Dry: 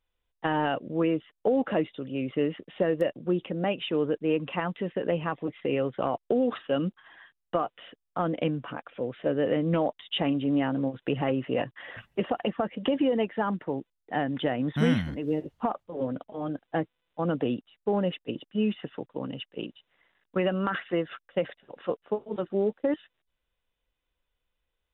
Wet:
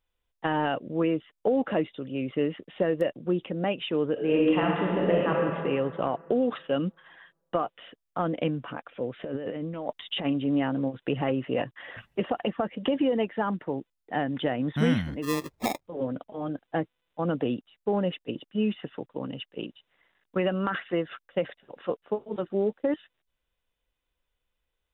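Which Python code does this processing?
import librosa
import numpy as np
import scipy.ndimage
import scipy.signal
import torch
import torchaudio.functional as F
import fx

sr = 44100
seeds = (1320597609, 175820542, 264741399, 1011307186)

y = fx.reverb_throw(x, sr, start_s=4.12, length_s=1.18, rt60_s=2.3, drr_db=-3.0)
y = fx.over_compress(y, sr, threshold_db=-32.0, ratio=-1.0, at=(9.19, 10.24), fade=0.02)
y = fx.sample_hold(y, sr, seeds[0], rate_hz=1500.0, jitter_pct=0, at=(15.22, 15.83), fade=0.02)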